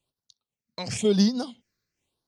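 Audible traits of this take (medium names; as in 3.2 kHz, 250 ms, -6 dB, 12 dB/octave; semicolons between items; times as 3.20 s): phasing stages 6, 0.97 Hz, lowest notch 800–2500 Hz; random flutter of the level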